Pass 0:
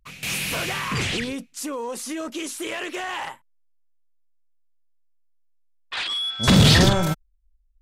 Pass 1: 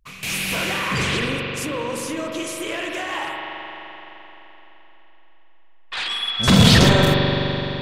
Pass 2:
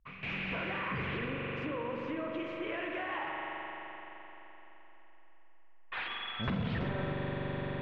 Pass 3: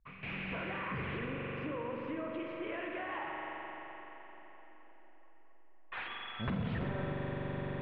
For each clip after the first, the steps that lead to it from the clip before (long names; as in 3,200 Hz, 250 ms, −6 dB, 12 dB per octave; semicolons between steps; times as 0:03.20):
spring reverb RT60 3.9 s, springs 42 ms, chirp 40 ms, DRR −0.5 dB; level +1 dB
low-pass filter 2,500 Hz 24 dB per octave; downward compressor 5 to 1, threshold −26 dBFS, peak gain reduction 15.5 dB; level −7 dB
high-frequency loss of the air 210 metres; tape delay 692 ms, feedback 54%, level −17.5 dB, low-pass 1,400 Hz; level −1.5 dB